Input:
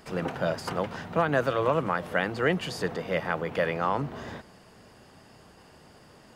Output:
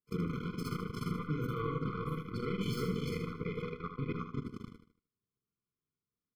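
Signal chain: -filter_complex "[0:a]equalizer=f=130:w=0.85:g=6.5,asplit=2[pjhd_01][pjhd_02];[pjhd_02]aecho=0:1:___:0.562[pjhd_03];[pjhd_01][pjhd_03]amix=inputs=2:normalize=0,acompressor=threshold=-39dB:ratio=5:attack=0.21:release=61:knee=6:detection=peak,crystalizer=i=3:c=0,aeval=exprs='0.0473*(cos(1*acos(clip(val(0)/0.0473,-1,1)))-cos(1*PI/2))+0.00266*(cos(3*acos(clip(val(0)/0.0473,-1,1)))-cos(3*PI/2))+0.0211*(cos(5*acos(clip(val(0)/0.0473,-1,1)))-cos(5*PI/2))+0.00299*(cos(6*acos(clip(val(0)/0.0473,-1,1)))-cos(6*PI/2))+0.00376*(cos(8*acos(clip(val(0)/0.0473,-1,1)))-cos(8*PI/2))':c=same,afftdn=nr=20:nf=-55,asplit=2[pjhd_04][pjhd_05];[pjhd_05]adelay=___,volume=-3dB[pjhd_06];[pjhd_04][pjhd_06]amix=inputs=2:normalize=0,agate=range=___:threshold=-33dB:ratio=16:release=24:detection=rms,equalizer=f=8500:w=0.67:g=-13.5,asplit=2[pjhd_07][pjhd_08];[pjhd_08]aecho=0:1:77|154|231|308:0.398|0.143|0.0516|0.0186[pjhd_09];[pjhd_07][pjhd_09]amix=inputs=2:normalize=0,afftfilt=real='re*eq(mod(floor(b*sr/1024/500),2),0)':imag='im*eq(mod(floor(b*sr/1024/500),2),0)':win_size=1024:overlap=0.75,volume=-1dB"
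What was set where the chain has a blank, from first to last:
353, 46, -55dB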